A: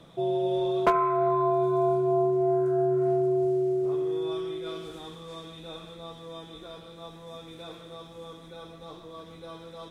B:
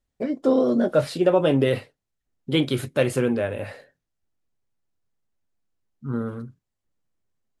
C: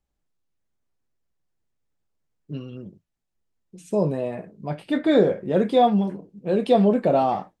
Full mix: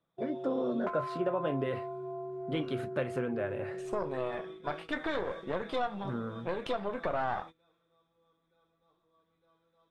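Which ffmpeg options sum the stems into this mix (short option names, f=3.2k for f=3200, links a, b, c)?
-filter_complex "[0:a]acompressor=threshold=-28dB:ratio=4,volume=-11dB[a];[1:a]volume=-8.5dB[b];[2:a]acompressor=threshold=-23dB:ratio=2.5,highpass=f=1.3k:p=1,aeval=exprs='0.158*(cos(1*acos(clip(val(0)/0.158,-1,1)))-cos(1*PI/2))+0.0158*(cos(8*acos(clip(val(0)/0.158,-1,1)))-cos(8*PI/2))':c=same,volume=2.5dB[c];[b][c]amix=inputs=2:normalize=0,highshelf=f=2.4k:g=-5.5,acompressor=threshold=-32dB:ratio=2.5,volume=0dB[d];[a][d]amix=inputs=2:normalize=0,equalizer=f=1.4k:w=0.9:g=6.5,agate=range=-20dB:threshold=-44dB:ratio=16:detection=peak,highshelf=f=6.1k:g=-10.5"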